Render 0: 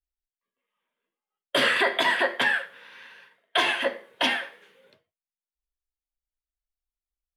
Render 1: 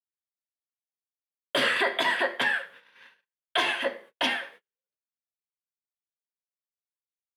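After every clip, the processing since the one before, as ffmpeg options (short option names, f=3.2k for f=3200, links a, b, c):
-af "agate=range=-42dB:threshold=-46dB:ratio=16:detection=peak,volume=-2.5dB"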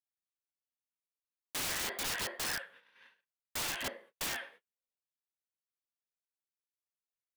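-af "aeval=exprs='(mod(13.3*val(0)+1,2)-1)/13.3':c=same,volume=-8dB"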